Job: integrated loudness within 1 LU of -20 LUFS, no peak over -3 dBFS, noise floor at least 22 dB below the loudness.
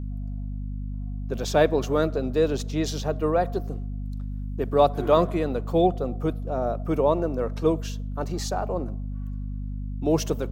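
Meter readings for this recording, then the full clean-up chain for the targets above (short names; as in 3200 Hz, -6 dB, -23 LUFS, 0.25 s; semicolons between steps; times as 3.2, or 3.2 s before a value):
hum 50 Hz; harmonics up to 250 Hz; hum level -29 dBFS; loudness -26.0 LUFS; peak -6.5 dBFS; loudness target -20.0 LUFS
-> de-hum 50 Hz, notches 5; gain +6 dB; limiter -3 dBFS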